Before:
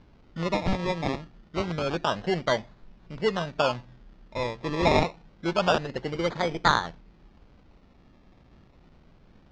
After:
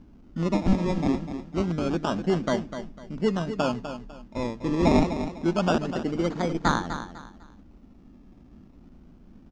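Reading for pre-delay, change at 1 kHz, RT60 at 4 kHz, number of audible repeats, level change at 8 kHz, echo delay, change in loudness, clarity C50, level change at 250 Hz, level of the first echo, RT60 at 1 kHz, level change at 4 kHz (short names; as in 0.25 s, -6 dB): none, -2.5 dB, none, 3, +1.0 dB, 0.25 s, +1.0 dB, none, +7.0 dB, -10.0 dB, none, -5.5 dB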